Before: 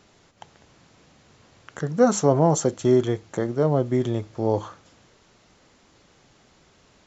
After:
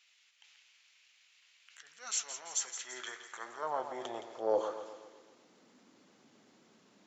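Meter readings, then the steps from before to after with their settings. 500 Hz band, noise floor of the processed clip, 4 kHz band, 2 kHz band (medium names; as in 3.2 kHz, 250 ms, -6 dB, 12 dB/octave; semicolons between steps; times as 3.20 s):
-16.0 dB, -68 dBFS, -3.5 dB, -7.5 dB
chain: transient shaper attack -8 dB, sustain +4 dB; flange 0.48 Hz, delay 0.8 ms, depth 7.5 ms, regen -81%; high-pass sweep 2.5 kHz -> 230 Hz, 2.39–5.64 s; two-band feedback delay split 1.9 kHz, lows 127 ms, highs 168 ms, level -10 dB; trim -4.5 dB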